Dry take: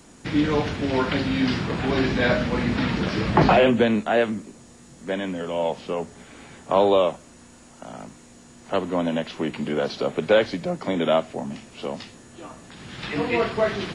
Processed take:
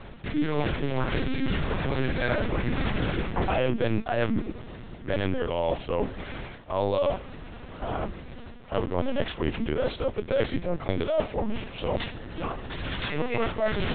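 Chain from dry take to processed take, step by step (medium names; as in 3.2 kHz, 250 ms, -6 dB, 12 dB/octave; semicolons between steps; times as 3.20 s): reverse; compression 6:1, threshold -33 dBFS, peak gain reduction 19.5 dB; reverse; LPC vocoder at 8 kHz pitch kept; trim +9 dB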